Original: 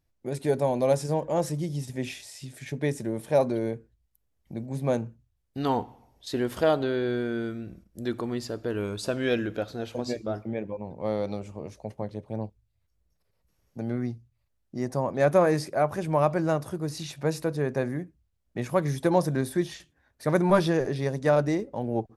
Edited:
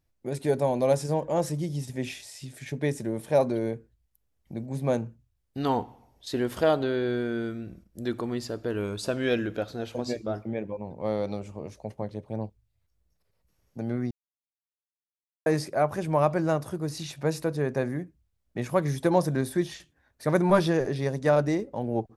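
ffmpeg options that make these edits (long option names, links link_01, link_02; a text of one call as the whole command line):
ffmpeg -i in.wav -filter_complex "[0:a]asplit=3[link_01][link_02][link_03];[link_01]atrim=end=14.11,asetpts=PTS-STARTPTS,afade=type=out:start_time=14.106:duration=0.004:curve=hsin[link_04];[link_02]atrim=start=14.11:end=15.46,asetpts=PTS-STARTPTS,volume=0[link_05];[link_03]atrim=start=15.46,asetpts=PTS-STARTPTS,afade=type=in:duration=0.004:curve=hsin[link_06];[link_04][link_05][link_06]concat=n=3:v=0:a=1" out.wav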